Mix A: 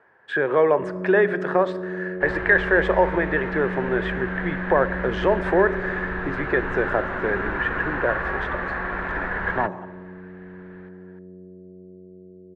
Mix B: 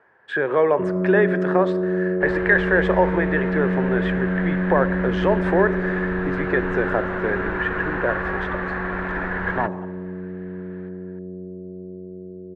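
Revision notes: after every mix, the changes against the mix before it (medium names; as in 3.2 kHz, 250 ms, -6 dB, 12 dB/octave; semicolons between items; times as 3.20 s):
first sound +8.5 dB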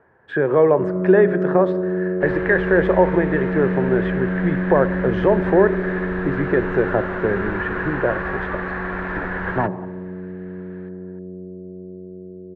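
speech: add tilt EQ -3.5 dB/octave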